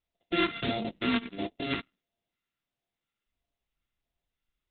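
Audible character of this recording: a buzz of ramps at a fixed pitch in blocks of 64 samples; phasing stages 2, 1.5 Hz, lowest notch 590–1400 Hz; Opus

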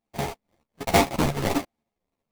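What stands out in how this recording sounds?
a buzz of ramps at a fixed pitch in blocks of 64 samples; phasing stages 2, 1.3 Hz, lowest notch 390–2700 Hz; aliases and images of a low sample rate 1500 Hz, jitter 20%; a shimmering, thickened sound

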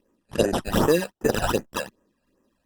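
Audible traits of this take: aliases and images of a low sample rate 2200 Hz, jitter 0%; phasing stages 12, 2.6 Hz, lowest notch 330–4300 Hz; Opus

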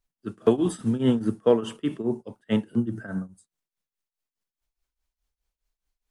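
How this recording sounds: tremolo triangle 4.8 Hz, depth 90%

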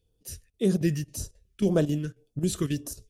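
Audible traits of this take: phasing stages 2, 1.8 Hz, lowest notch 720–2000 Hz; chopped level 3.7 Hz, depth 65%, duty 85%

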